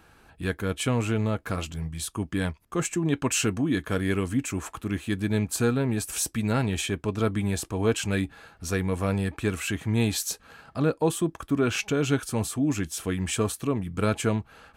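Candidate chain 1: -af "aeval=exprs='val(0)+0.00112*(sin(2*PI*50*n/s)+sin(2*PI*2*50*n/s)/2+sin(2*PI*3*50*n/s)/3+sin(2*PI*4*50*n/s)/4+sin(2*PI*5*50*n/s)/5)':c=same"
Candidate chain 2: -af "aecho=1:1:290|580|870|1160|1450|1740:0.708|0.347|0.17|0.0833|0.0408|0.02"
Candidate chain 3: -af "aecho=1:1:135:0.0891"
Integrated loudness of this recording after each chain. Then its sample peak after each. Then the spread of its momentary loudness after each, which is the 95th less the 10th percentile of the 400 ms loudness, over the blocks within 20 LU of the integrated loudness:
-27.5, -25.5, -27.5 LUFS; -11.5, -10.0, -11.5 dBFS; 7, 5, 7 LU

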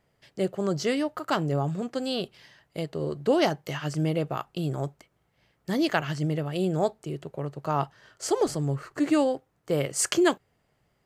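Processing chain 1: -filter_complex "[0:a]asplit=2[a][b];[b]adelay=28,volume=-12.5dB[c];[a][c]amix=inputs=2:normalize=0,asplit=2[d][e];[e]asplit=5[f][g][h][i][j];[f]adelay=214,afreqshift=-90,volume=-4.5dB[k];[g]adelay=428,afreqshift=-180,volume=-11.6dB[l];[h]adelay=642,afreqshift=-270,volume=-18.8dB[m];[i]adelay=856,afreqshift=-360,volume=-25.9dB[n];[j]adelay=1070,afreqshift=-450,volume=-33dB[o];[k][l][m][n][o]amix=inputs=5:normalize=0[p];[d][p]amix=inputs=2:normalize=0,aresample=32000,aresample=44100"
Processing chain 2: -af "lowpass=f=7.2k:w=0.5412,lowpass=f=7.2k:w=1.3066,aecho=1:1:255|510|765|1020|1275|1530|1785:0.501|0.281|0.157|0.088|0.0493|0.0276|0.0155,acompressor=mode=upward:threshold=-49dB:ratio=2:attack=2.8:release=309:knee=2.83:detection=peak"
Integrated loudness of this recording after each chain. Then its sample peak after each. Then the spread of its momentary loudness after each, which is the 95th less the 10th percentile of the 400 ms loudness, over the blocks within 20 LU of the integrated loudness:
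-26.5, -27.0 LUFS; -6.0, -6.0 dBFS; 11, 10 LU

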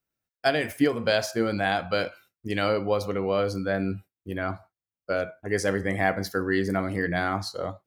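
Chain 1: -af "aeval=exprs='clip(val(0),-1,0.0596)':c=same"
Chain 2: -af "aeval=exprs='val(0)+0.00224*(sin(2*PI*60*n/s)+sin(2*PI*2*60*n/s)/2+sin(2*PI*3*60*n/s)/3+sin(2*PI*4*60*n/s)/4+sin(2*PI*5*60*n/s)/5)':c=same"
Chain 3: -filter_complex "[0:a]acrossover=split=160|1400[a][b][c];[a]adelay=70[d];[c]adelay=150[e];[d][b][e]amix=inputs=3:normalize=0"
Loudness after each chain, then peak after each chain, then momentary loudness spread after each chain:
-29.0, -27.0, -28.0 LUFS; -10.5, -8.5, -11.5 dBFS; 7, 8, 9 LU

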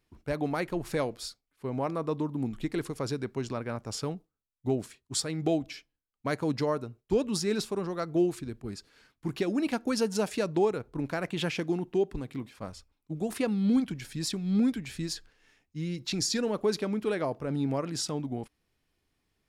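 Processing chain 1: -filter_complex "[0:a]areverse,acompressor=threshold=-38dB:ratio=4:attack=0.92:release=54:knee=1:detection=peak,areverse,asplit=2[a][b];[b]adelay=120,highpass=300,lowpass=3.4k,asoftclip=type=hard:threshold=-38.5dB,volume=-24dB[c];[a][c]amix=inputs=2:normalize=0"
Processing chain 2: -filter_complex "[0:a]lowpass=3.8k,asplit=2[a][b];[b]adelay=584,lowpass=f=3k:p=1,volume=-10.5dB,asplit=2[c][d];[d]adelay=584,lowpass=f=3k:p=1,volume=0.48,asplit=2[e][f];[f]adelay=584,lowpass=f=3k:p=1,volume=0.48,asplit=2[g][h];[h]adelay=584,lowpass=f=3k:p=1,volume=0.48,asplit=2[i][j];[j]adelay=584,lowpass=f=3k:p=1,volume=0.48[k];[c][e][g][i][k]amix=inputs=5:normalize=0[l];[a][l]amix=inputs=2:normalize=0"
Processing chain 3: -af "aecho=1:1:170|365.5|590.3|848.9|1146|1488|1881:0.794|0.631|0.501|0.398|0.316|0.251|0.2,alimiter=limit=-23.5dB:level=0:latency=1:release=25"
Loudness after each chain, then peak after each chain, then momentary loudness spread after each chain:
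-41.5, -31.5, -31.5 LUFS; -29.0, -15.0, -23.5 dBFS; 7, 12, 3 LU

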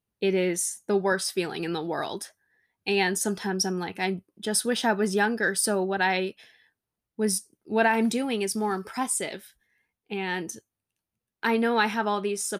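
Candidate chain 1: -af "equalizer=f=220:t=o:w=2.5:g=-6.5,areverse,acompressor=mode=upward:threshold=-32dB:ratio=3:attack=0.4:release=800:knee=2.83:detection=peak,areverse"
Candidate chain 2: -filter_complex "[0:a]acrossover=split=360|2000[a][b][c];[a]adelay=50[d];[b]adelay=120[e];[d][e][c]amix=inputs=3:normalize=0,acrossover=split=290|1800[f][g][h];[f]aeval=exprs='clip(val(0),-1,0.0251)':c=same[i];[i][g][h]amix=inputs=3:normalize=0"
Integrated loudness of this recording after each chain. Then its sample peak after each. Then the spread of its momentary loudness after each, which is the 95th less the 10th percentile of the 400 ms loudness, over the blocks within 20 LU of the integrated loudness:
-28.5, -28.0 LUFS; -11.5, -10.5 dBFS; 12, 12 LU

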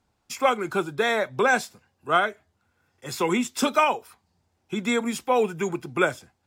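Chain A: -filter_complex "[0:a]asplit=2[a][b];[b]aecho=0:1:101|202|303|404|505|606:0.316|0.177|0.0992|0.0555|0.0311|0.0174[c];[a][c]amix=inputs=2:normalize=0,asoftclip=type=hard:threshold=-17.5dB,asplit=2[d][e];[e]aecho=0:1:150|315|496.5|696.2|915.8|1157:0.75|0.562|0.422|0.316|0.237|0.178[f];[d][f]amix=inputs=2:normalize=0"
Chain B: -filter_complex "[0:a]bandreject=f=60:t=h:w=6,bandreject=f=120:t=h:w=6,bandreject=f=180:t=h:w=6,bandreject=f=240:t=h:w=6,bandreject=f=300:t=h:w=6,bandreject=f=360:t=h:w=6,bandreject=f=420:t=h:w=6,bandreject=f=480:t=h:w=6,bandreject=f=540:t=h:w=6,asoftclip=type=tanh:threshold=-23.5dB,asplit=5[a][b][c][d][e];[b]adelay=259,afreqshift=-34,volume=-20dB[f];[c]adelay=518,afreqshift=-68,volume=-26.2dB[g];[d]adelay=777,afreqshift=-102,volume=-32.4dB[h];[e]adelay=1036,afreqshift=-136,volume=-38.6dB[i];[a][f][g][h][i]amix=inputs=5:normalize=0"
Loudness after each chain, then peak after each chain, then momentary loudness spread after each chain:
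-23.0, -30.0 LUFS; -10.0, -22.0 dBFS; 8, 13 LU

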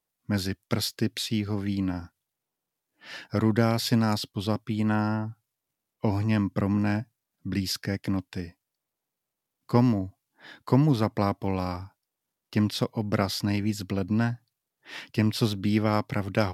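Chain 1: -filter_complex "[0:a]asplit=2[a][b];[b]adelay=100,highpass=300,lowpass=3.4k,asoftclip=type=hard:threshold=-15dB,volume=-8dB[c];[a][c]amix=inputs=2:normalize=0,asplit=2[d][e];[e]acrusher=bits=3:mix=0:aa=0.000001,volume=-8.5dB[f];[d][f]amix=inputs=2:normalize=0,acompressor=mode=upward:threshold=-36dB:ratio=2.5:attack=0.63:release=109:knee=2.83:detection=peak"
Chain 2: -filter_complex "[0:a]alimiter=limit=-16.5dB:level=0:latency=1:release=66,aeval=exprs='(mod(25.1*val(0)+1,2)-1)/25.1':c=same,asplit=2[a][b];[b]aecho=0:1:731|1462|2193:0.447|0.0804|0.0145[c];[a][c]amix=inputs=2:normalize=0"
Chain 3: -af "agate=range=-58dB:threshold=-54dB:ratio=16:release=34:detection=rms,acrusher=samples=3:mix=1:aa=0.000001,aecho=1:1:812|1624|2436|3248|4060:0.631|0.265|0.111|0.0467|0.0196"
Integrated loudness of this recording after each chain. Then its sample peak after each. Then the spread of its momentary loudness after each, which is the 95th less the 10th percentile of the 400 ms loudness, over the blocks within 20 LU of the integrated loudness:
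-24.5, -34.0, -26.5 LUFS; -4.0, -24.5, -6.5 dBFS; 15, 10, 9 LU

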